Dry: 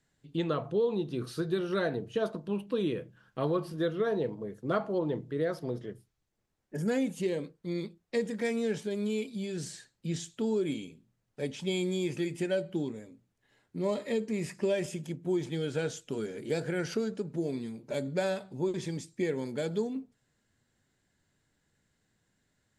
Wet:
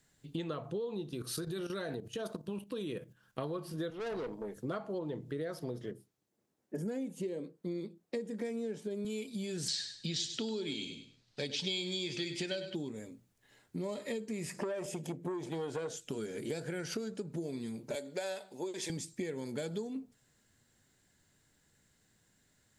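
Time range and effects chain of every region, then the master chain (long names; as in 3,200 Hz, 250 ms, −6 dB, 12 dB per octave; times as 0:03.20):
0:01.09–0:03.39: output level in coarse steps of 12 dB + high-shelf EQ 6,400 Hz +6.5 dB
0:03.90–0:04.57: high-pass filter 220 Hz + tube saturation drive 34 dB, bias 0.5
0:05.91–0:09.05: high-pass filter 250 Hz + tilt shelving filter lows +7.5 dB, about 670 Hz
0:09.68–0:12.75: low-pass with resonance 4,300 Hz, resonance Q 3 + high-shelf EQ 2,400 Hz +8.5 dB + repeating echo 100 ms, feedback 30%, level −12 dB
0:14.54–0:15.97: parametric band 570 Hz +11 dB 2 octaves + downward compressor 2 to 1, threshold −24 dBFS + saturating transformer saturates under 660 Hz
0:17.95–0:18.90: high-pass filter 450 Hz + parametric band 1,200 Hz −6.5 dB 0.38 octaves
whole clip: downward compressor 6 to 1, threshold −38 dBFS; high-shelf EQ 5,300 Hz +8.5 dB; level +2.5 dB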